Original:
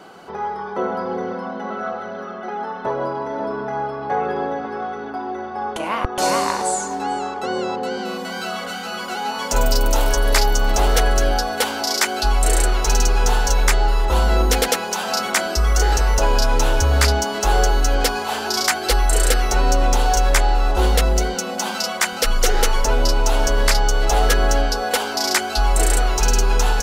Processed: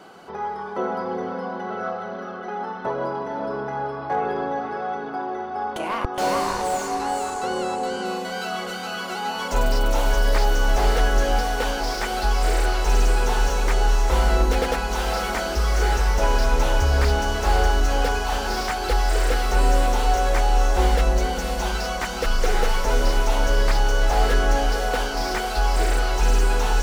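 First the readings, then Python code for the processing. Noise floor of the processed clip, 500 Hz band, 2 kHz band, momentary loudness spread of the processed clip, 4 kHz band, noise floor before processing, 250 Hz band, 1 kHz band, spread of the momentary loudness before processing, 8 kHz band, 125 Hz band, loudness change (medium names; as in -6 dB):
-32 dBFS, -2.5 dB, -3.0 dB, 8 LU, -6.0 dB, -30 dBFS, -2.5 dB, -2.0 dB, 9 LU, -10.0 dB, -2.5 dB, -3.5 dB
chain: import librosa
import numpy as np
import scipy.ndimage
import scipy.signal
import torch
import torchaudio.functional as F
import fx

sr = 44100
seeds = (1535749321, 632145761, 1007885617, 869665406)

y = fx.echo_diffused(x, sr, ms=516, feedback_pct=46, wet_db=-8.5)
y = fx.slew_limit(y, sr, full_power_hz=190.0)
y = y * 10.0 ** (-3.0 / 20.0)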